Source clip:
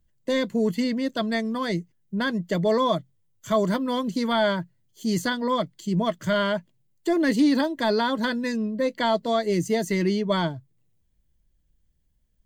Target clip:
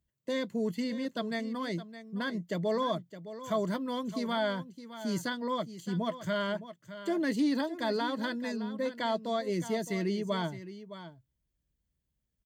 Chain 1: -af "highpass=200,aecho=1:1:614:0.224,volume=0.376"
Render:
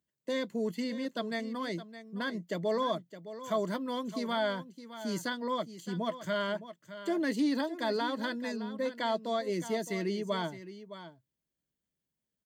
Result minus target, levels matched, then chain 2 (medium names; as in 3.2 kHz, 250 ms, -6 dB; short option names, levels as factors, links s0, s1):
125 Hz band -3.0 dB
-af "highpass=54,aecho=1:1:614:0.224,volume=0.376"